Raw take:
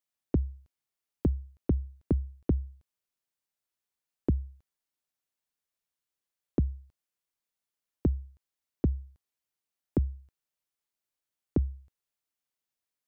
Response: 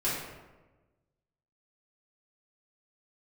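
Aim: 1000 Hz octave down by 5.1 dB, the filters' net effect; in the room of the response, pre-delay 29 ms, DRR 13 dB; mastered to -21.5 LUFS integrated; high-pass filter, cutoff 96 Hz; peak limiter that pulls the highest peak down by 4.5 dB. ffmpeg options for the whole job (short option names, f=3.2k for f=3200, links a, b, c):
-filter_complex "[0:a]highpass=96,equalizer=f=1k:t=o:g=-7.5,alimiter=limit=-21dB:level=0:latency=1,asplit=2[a][b];[1:a]atrim=start_sample=2205,adelay=29[c];[b][c]afir=irnorm=-1:irlink=0,volume=-21.5dB[d];[a][d]amix=inputs=2:normalize=0,volume=17.5dB"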